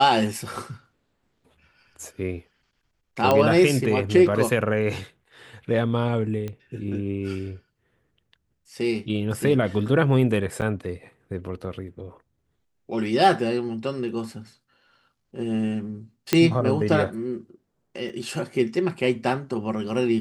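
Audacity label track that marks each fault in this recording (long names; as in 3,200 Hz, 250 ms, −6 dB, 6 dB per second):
3.310000	3.310000	click −7 dBFS
6.480000	6.480000	click −20 dBFS
10.610000	10.620000	drop-out 8.4 ms
16.330000	16.330000	click −4 dBFS
18.090000	18.090000	drop-out 4 ms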